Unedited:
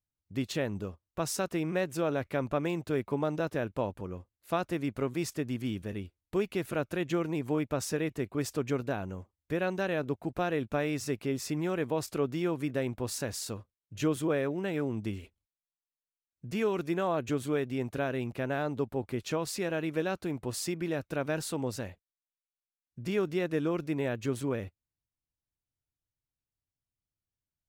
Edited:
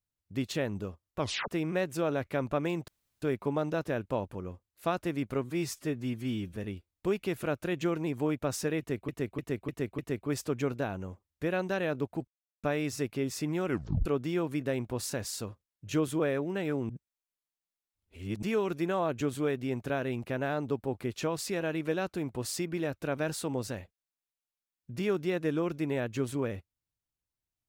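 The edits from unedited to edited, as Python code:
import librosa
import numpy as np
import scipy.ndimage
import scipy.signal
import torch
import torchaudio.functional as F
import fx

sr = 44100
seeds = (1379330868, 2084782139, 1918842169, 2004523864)

y = fx.edit(x, sr, fx.tape_stop(start_s=1.19, length_s=0.29),
    fx.insert_room_tone(at_s=2.88, length_s=0.34),
    fx.stretch_span(start_s=5.1, length_s=0.75, factor=1.5),
    fx.repeat(start_s=8.07, length_s=0.3, count=5),
    fx.silence(start_s=10.36, length_s=0.36),
    fx.tape_stop(start_s=11.74, length_s=0.4),
    fx.reverse_span(start_s=14.98, length_s=1.53), tone=tone)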